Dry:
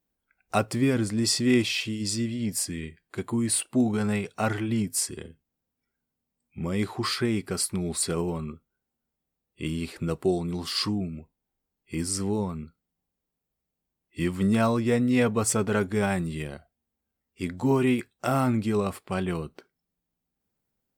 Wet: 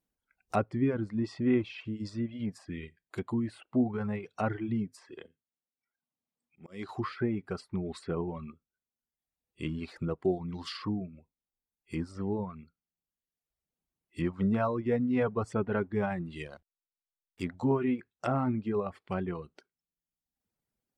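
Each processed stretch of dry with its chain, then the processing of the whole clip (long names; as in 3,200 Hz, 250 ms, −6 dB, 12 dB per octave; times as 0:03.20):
0:04.99–0:06.89: high-shelf EQ 7,300 Hz −11 dB + volume swells 274 ms + high-pass filter 270 Hz 6 dB per octave
0:14.24–0:17.55: high-shelf EQ 4,200 Hz +6 dB + slack as between gear wheels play −46 dBFS
whole clip: reverb reduction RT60 0.94 s; treble cut that deepens with the level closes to 1,500 Hz, closed at −25.5 dBFS; level −3.5 dB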